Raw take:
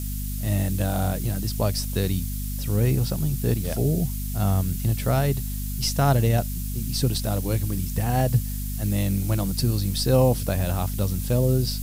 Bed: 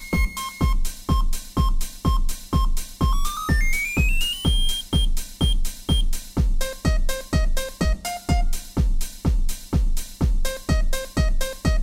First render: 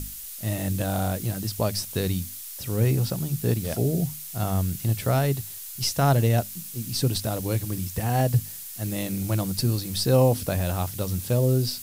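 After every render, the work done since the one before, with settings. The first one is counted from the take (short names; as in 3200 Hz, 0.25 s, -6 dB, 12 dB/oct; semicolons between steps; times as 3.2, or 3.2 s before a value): notches 50/100/150/200/250 Hz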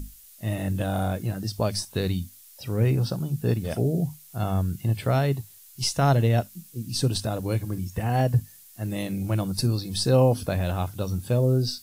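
noise print and reduce 12 dB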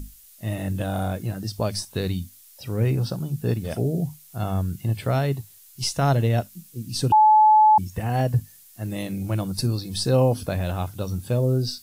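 7.12–7.78 bleep 860 Hz -11 dBFS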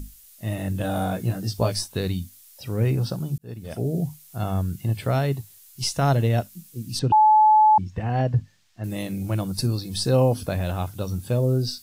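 0.82–1.88 doubler 17 ms -2.5 dB; 3.38–3.97 fade in; 6.99–8.84 air absorption 160 m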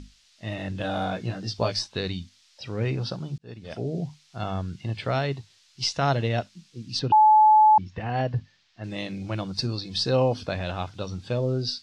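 LPF 4900 Hz 24 dB/oct; tilt +2 dB/oct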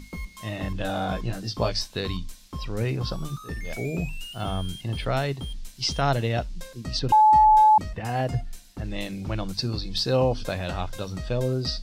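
add bed -14.5 dB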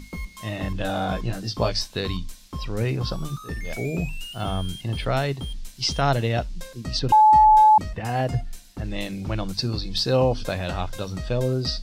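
gain +2 dB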